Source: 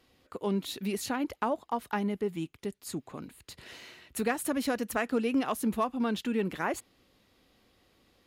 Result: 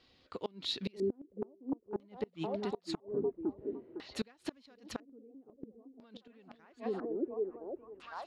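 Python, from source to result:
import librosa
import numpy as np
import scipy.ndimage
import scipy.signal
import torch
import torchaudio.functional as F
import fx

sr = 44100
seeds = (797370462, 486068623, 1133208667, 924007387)

y = fx.echo_stepped(x, sr, ms=507, hz=340.0, octaves=0.7, feedback_pct=70, wet_db=-1)
y = fx.filter_lfo_lowpass(y, sr, shape='square', hz=0.5, low_hz=390.0, high_hz=4400.0, q=2.4)
y = fx.gate_flip(y, sr, shuts_db=-21.0, range_db=-29)
y = y * librosa.db_to_amplitude(-3.0)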